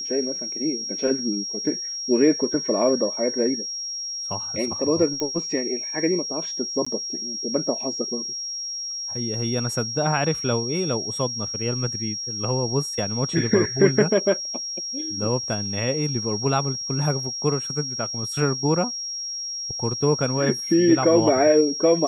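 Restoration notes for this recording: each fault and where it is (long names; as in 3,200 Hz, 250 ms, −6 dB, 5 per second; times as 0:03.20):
whistle 5,600 Hz −28 dBFS
0:05.20: click −13 dBFS
0:06.85–0:06.87: drop-out 15 ms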